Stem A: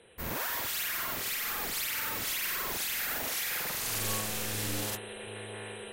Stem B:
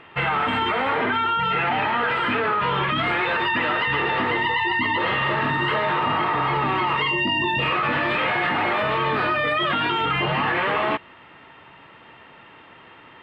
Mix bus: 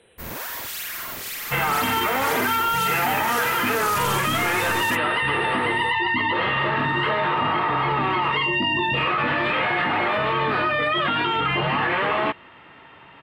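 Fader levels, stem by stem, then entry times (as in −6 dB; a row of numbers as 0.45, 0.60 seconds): +2.0, 0.0 decibels; 0.00, 1.35 seconds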